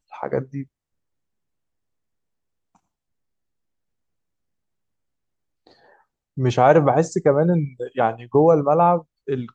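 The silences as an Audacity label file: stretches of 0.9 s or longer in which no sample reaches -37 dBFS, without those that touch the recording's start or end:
0.630000	5.670000	silence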